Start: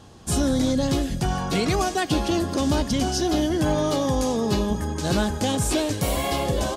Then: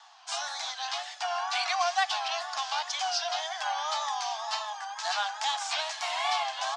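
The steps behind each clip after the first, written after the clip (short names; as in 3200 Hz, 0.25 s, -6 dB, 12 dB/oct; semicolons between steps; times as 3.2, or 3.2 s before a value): LPF 5900 Hz 24 dB/oct; wow and flutter 99 cents; steep high-pass 690 Hz 96 dB/oct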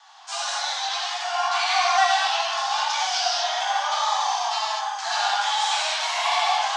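non-linear reverb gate 0.27 s flat, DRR -7 dB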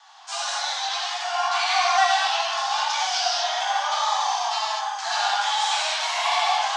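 nothing audible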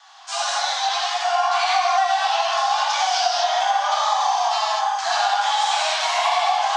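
notch 890 Hz, Q 12; dynamic EQ 770 Hz, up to +7 dB, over -36 dBFS, Q 1.3; compressor, threshold -19 dBFS, peak gain reduction 10 dB; gain +3 dB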